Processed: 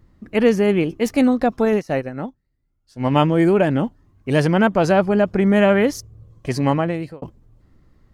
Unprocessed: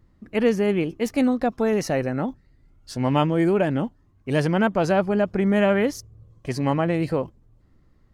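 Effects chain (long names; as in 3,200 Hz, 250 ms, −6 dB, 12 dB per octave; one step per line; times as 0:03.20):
0:01.65–0:03.16: expander for the loud parts 2.5 to 1, over −33 dBFS
0:06.69–0:07.22: fade out
level +4.5 dB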